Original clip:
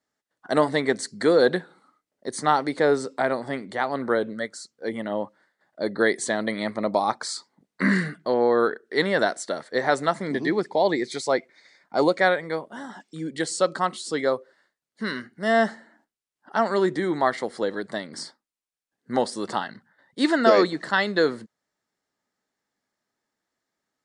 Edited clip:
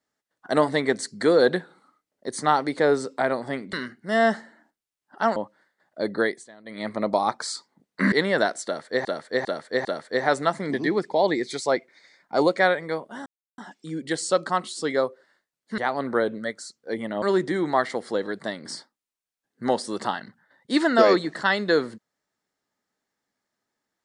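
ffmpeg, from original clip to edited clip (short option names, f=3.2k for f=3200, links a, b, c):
-filter_complex "[0:a]asplit=12[a][b][c][d][e][f][g][h][i][j][k][l];[a]atrim=end=3.732[m];[b]atrim=start=15.068:end=16.702[n];[c]atrim=start=5.168:end=6.26,asetpts=PTS-STARTPTS,afade=t=out:st=0.802:d=0.29:silence=0.0749894[o];[d]atrim=start=6.26:end=6.45,asetpts=PTS-STARTPTS,volume=-22.5dB[p];[e]atrim=start=6.45:end=7.932,asetpts=PTS-STARTPTS,afade=t=in:d=0.29:silence=0.0749894[q];[f]atrim=start=8.928:end=9.862[r];[g]atrim=start=9.458:end=9.862[s];[h]atrim=start=9.458:end=9.862[t];[i]atrim=start=9.458:end=12.87,asetpts=PTS-STARTPTS,afade=t=out:st=3.408:d=0.004:c=hsin,apad=pad_dur=0.32[u];[j]atrim=start=12.87:end=15.072,asetpts=PTS-STARTPTS,afade=t=in:d=0.004:c=hsin[v];[k]atrim=start=3.728:end=5.172[w];[l]atrim=start=16.698[x];[m][n]acrossfade=d=0.004:c1=hsin:c2=hsin[y];[o][p][q]concat=n=3:v=0:a=1[z];[y][z]acrossfade=d=0.004:c1=hsin:c2=hsin[aa];[aa][r]acrossfade=d=0.004:c1=hsin:c2=hsin[ab];[ab][s]acrossfade=d=0.004:c1=hsin:c2=hsin[ac];[ac][t]acrossfade=d=0.004:c1=hsin:c2=hsin[ad];[u][v]concat=n=2:v=0:a=1[ae];[ad][ae]acrossfade=d=0.004:c1=hsin:c2=hsin[af];[af][w]acrossfade=d=0.004:c1=hsin:c2=hsin[ag];[ag][x]acrossfade=d=0.004:c1=hsin:c2=hsin"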